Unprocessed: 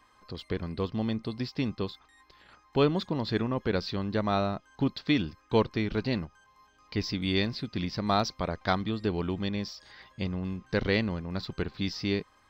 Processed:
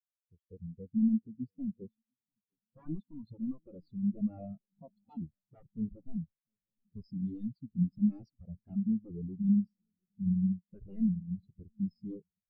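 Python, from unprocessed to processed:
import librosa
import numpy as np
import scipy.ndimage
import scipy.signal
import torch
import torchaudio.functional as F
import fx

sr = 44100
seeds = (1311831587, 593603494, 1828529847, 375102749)

y = 10.0 ** (-27.5 / 20.0) * (np.abs((x / 10.0 ** (-27.5 / 20.0) + 3.0) % 4.0 - 2.0) - 1.0)
y = fx.echo_swing(y, sr, ms=937, ratio=3, feedback_pct=58, wet_db=-14)
y = fx.spectral_expand(y, sr, expansion=4.0)
y = F.gain(torch.from_numpy(y), 6.0).numpy()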